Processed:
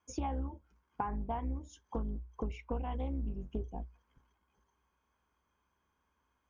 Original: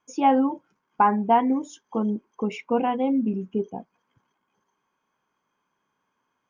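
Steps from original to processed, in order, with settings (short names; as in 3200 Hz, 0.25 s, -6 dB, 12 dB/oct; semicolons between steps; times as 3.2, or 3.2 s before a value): octaver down 2 oct, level 0 dB; bell 60 Hz +13 dB 0.4 oct; compressor 10:1, threshold -29 dBFS, peak gain reduction 18 dB; 2.9–3.79 high shelf 3400 Hz -> 4800 Hz +10.5 dB; Doppler distortion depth 0.2 ms; gain -4.5 dB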